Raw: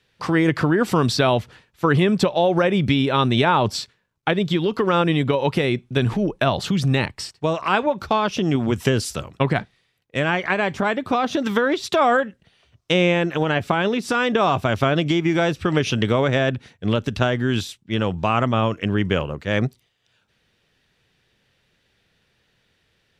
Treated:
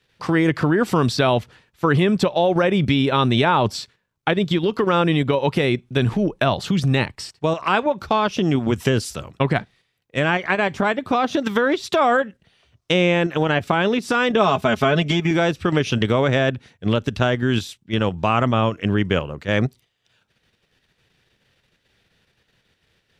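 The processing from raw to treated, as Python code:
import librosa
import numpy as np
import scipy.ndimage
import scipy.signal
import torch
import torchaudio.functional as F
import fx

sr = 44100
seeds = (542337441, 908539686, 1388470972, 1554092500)

p1 = fx.comb(x, sr, ms=4.7, depth=0.71, at=(14.36, 15.31))
p2 = fx.level_steps(p1, sr, step_db=22)
p3 = p1 + (p2 * librosa.db_to_amplitude(0.0))
y = p3 * librosa.db_to_amplitude(-3.5)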